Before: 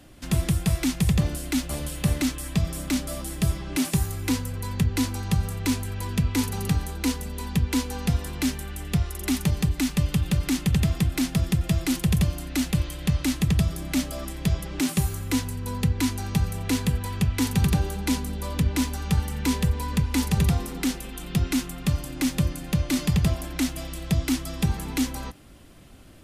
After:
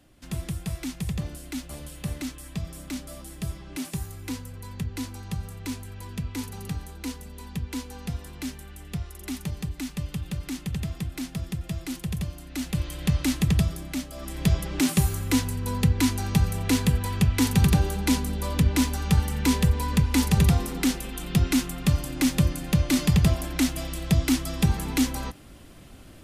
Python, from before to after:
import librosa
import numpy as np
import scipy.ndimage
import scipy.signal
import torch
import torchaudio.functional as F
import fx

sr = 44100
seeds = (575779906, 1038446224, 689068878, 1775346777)

y = fx.gain(x, sr, db=fx.line((12.45, -8.5), (12.99, 0.0), (13.59, 0.0), (14.09, -8.0), (14.4, 2.0)))